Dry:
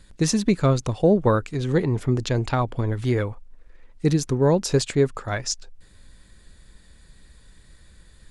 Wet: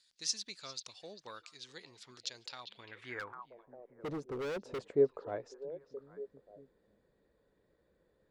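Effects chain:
echo through a band-pass that steps 400 ms, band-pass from 3,500 Hz, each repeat −1.4 octaves, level −11 dB
band-pass filter sweep 4,800 Hz → 480 Hz, 0:02.56–0:03.79
0:03.19–0:04.80: gain into a clipping stage and back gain 32 dB
level −4 dB

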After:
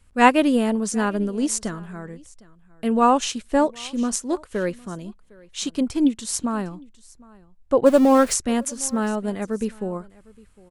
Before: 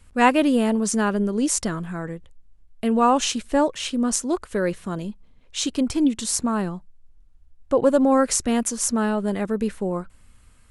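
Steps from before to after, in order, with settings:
0:07.86–0:08.34: converter with a step at zero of −27.5 dBFS
single-tap delay 757 ms −20.5 dB
expander for the loud parts 1.5 to 1, over −29 dBFS
level +3 dB

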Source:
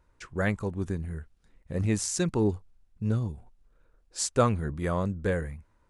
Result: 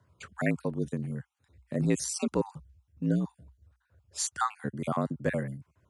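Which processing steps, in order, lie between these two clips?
time-frequency cells dropped at random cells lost 34%
frequency shifter +59 Hz

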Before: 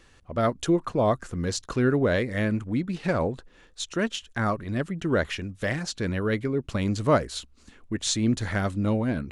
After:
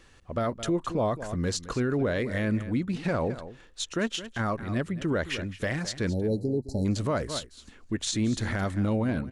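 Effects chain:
time-frequency box erased 0:06.09–0:06.85, 910–3,900 Hz
on a send: single-tap delay 215 ms −16 dB
on the sum: brickwall limiter −19 dBFS, peak gain reduction 9.5 dB

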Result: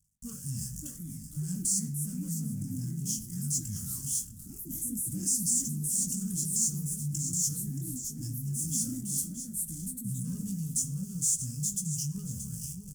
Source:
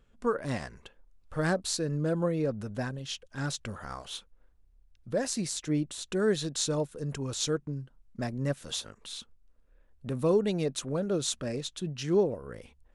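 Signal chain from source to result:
converter with a step at zero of −39.5 dBFS
single-tap delay 627 ms −12.5 dB
noise gate with hold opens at −39 dBFS
chorus effect 0.84 Hz, delay 19 ms, depth 5 ms
leveller curve on the samples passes 3
inverse Chebyshev band-stop filter 320–4,100 Hz, stop band 40 dB
delay with pitch and tempo change per echo 633 ms, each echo +4 semitones, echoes 2, each echo −6 dB
on a send at −12.5 dB: parametric band 1,800 Hz +7.5 dB + convolution reverb RT60 0.70 s, pre-delay 4 ms
on the sum: brickwall limiter −23 dBFS, peak gain reduction 7 dB
reversed playback
upward compression, threshold −27 dBFS
reversed playback
meter weighting curve D

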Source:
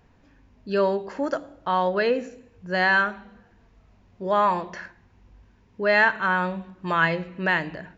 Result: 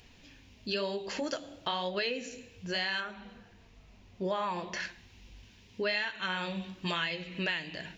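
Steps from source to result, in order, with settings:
high shelf with overshoot 2,000 Hz +12.5 dB, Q 1.5, from 0:03.00 +7 dB, from 0:04.80 +13.5 dB
downward compressor 6 to 1, threshold −30 dBFS, peak gain reduction 19 dB
flanger 0.98 Hz, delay 2.1 ms, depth 9.3 ms, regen −55%
level +3.5 dB

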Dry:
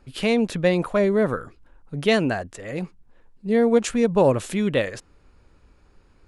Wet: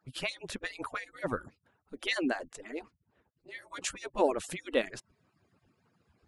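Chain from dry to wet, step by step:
harmonic-percussive split with one part muted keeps percussive
0:02.67–0:03.59: high-shelf EQ 4,800 Hz −8.5 dB
level −5.5 dB

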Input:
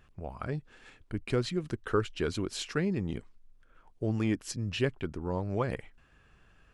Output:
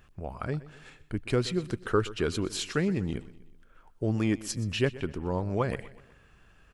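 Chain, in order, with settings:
high-shelf EQ 9,100 Hz +5.5 dB
on a send: repeating echo 124 ms, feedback 49%, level −18 dB
on the sum: level +2.5 dB

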